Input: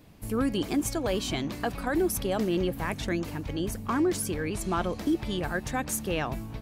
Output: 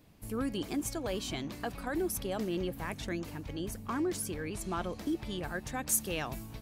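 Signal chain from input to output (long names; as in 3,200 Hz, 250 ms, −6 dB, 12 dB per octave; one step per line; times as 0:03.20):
high-shelf EQ 3,900 Hz +2.5 dB, from 0:05.87 +11.5 dB
level −7 dB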